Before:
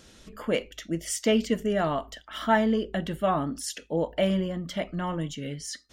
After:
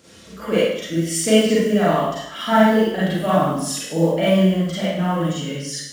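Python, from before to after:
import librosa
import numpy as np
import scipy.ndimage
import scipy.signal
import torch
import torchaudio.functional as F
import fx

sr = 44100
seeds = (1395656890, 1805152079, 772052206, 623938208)

y = fx.spec_quant(x, sr, step_db=15)
y = scipy.signal.sosfilt(scipy.signal.butter(4, 74.0, 'highpass', fs=sr, output='sos'), y)
y = fx.quant_float(y, sr, bits=4)
y = fx.rev_schroeder(y, sr, rt60_s=0.8, comb_ms=33, drr_db=-9.0)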